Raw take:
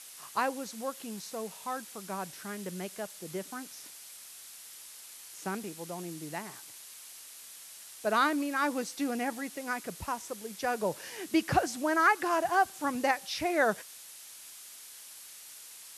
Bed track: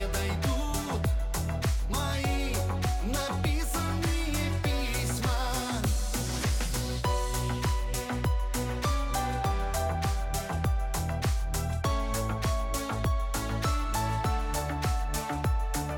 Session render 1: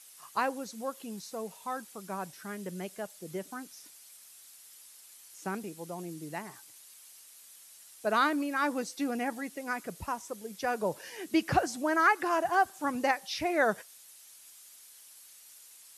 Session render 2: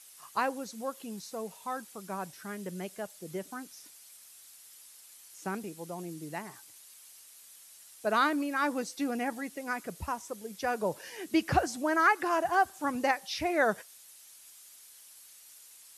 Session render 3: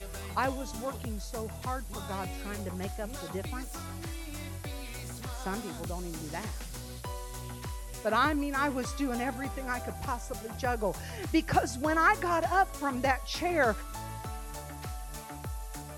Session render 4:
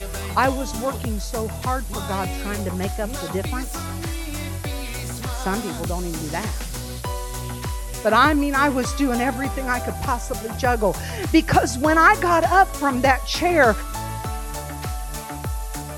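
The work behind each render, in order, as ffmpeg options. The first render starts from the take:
-af "afftdn=nr=8:nf=-49"
-af "equalizer=f=73:t=o:w=0.48:g=6.5"
-filter_complex "[1:a]volume=0.282[s0];[0:a][s0]amix=inputs=2:normalize=0"
-af "volume=3.55,alimiter=limit=0.708:level=0:latency=1"

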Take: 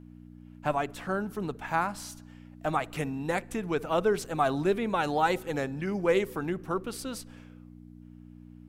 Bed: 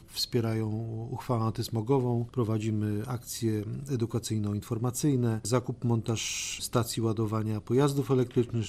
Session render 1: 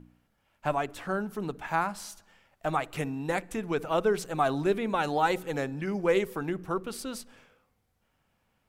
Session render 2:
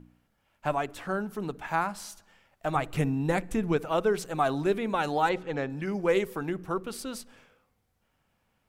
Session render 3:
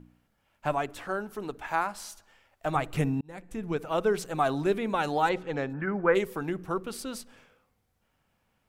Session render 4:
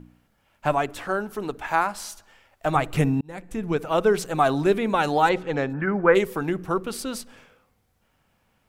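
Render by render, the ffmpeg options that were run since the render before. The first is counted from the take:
-af "bandreject=f=60:t=h:w=4,bandreject=f=120:t=h:w=4,bandreject=f=180:t=h:w=4,bandreject=f=240:t=h:w=4,bandreject=f=300:t=h:w=4"
-filter_complex "[0:a]asettb=1/sr,asplit=3[s0][s1][s2];[s0]atrim=end=2.754[s3];[s1]atrim=start=2.75:end=3.77,asetpts=PTS-STARTPTS,afade=t=in:d=0.004:c=qsin,afade=t=out:st=1.016:d=0.004:c=qsin,lowshelf=f=250:g=11[s4];[s2]atrim=start=3.766[s5];[s3][s4]acrossfade=d=0.004:c1=hsin:c2=qsin[s6];[s6][s5]acrossfade=d=0.004:c1=qsin:c2=hsin,asettb=1/sr,asplit=3[s7][s8][s9];[s7]atrim=end=5.294[s10];[s8]atrim=start=5.29:end=5.7,asetpts=PTS-STARTPTS,afade=t=in:d=0.004:c=qsin,afade=t=out:st=0.406:d=0.004:c=qsin,lowpass=3800[s11];[s9]atrim=start=5.696[s12];[s10][s11]acrossfade=d=0.004:c1=hsin:c2=qsin[s13];[s13][s12]acrossfade=d=0.004:c1=qsin:c2=hsin"
-filter_complex "[0:a]asettb=1/sr,asplit=3[s0][s1][s2];[s0]atrim=end=1.054[s3];[s1]atrim=start=1.05:end=2.66,asetpts=PTS-STARTPTS,afade=t=in:d=0.004:c=qsin,afade=t=out:st=1.606:d=0.004:c=qsin,equalizer=f=170:t=o:w=0.77:g=-9.5[s4];[s2]atrim=start=2.656[s5];[s3][s4]acrossfade=d=0.004:c1=hsin:c2=qsin[s6];[s6][s5]acrossfade=d=0.004:c1=qsin:c2=hsin,asplit=3[s7][s8][s9];[s7]afade=t=out:st=5.72:d=0.02[s10];[s8]lowpass=f=1500:t=q:w=3.3,afade=t=in:st=5.72:d=0.02,afade=t=out:st=6.14:d=0.02[s11];[s9]afade=t=in:st=6.14:d=0.02[s12];[s10][s11][s12]amix=inputs=3:normalize=0,asplit=2[s13][s14];[s13]atrim=end=3.21,asetpts=PTS-STARTPTS,afade=t=out:st=3.206:d=0.004:c=hsin[s15];[s14]atrim=start=3.21,asetpts=PTS-STARTPTS,afade=t=in:d=0.87[s16];[s15][s16]concat=n=2:v=0:a=1"
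-af "volume=2"

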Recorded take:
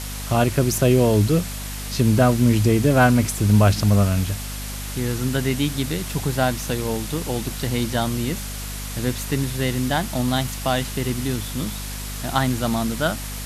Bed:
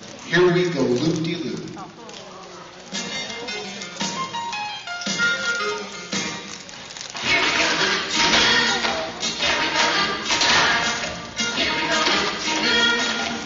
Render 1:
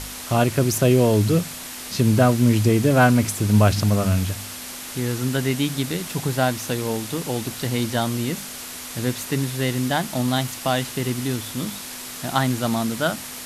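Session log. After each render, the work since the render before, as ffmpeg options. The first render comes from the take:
-af "bandreject=f=50:t=h:w=4,bandreject=f=100:t=h:w=4,bandreject=f=150:t=h:w=4,bandreject=f=200:t=h:w=4"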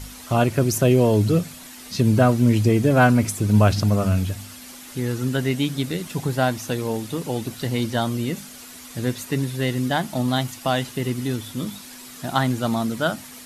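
-af "afftdn=nr=9:nf=-35"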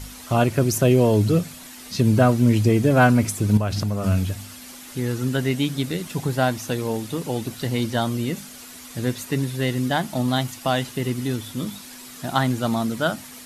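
-filter_complex "[0:a]asettb=1/sr,asplit=3[s0][s1][s2];[s0]atrim=end=3.574[s3];[s1]atrim=start=3.57:end=4.04,asetpts=PTS-STARTPTS,afade=t=in:d=0.004:c=qsin,afade=t=out:st=0.466:d=0.004:c=qsin,acompressor=threshold=0.1:ratio=4:attack=3.2:release=140:knee=1:detection=peak[s4];[s2]atrim=start=4.036[s5];[s3][s4]acrossfade=d=0.004:c1=hsin:c2=qsin[s6];[s6][s5]acrossfade=d=0.004:c1=qsin:c2=hsin"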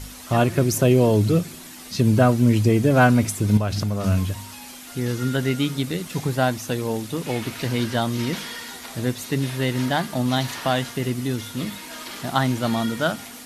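-filter_complex "[1:a]volume=0.126[s0];[0:a][s0]amix=inputs=2:normalize=0"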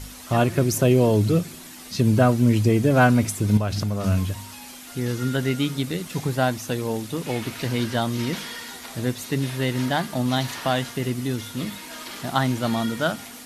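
-af "volume=0.891"

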